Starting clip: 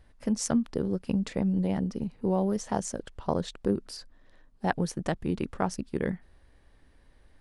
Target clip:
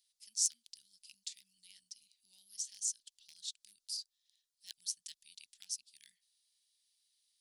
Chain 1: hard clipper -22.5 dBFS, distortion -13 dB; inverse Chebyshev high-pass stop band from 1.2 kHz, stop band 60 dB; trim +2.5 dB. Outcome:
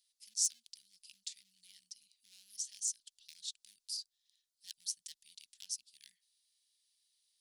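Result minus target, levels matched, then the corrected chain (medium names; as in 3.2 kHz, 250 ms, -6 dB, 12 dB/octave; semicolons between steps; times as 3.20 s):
hard clipper: distortion +12 dB
hard clipper -16.5 dBFS, distortion -25 dB; inverse Chebyshev high-pass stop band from 1.2 kHz, stop band 60 dB; trim +2.5 dB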